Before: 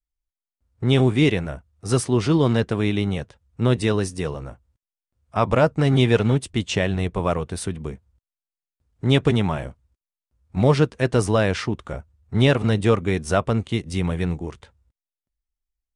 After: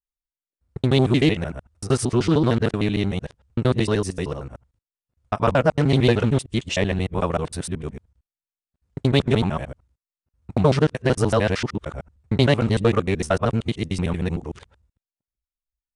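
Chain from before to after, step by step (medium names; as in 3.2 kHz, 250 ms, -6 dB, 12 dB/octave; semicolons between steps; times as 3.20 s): time reversed locally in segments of 76 ms; spectral noise reduction 12 dB; loudspeaker Doppler distortion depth 0.16 ms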